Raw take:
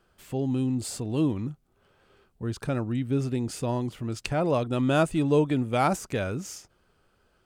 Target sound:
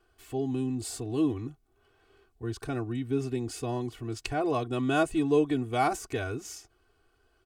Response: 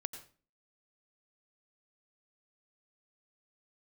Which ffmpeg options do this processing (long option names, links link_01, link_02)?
-af "aecho=1:1:2.7:0.94,volume=-5dB"